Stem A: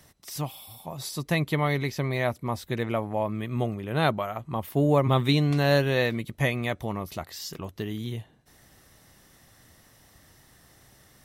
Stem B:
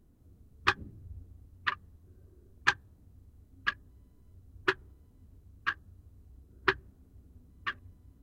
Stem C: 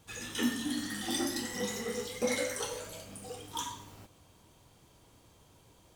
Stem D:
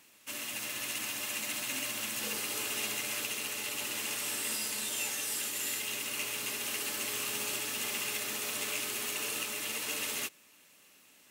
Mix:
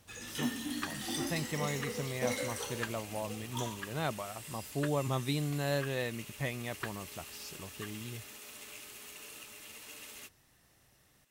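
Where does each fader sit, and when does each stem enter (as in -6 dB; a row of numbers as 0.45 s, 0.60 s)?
-11.0 dB, -14.0 dB, -4.0 dB, -13.5 dB; 0.00 s, 0.15 s, 0.00 s, 0.00 s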